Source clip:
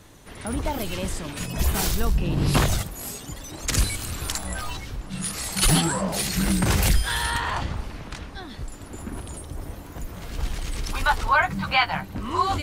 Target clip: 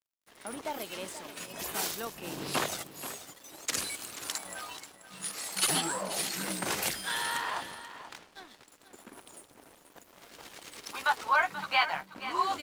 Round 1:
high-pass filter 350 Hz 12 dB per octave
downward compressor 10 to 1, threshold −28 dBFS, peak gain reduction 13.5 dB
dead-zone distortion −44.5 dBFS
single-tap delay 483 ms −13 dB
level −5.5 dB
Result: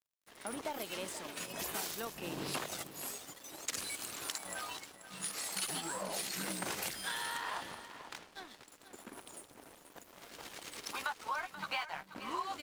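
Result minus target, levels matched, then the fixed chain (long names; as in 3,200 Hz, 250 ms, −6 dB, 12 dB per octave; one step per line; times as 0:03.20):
downward compressor: peak gain reduction +13.5 dB
high-pass filter 350 Hz 12 dB per octave
dead-zone distortion −44.5 dBFS
single-tap delay 483 ms −13 dB
level −5.5 dB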